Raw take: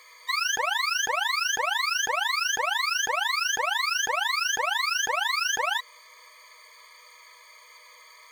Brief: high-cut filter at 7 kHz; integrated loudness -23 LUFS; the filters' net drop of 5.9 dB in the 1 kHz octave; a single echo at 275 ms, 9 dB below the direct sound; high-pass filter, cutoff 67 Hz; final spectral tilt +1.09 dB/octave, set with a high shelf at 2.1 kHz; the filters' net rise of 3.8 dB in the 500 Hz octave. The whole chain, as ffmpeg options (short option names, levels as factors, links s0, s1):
-af "highpass=67,lowpass=7000,equalizer=f=500:t=o:g=7.5,equalizer=f=1000:t=o:g=-8,highshelf=f=2100:g=-6,aecho=1:1:275:0.355,volume=2"